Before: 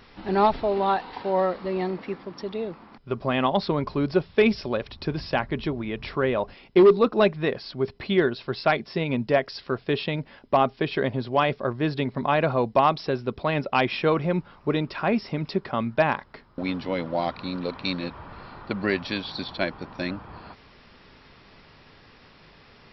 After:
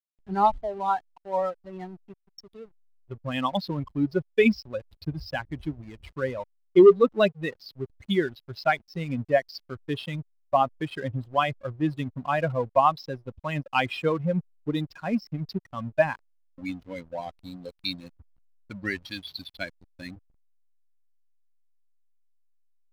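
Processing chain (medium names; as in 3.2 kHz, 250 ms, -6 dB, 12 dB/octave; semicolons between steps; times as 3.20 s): expander on every frequency bin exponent 2; hysteresis with a dead band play -45 dBFS; trim +3 dB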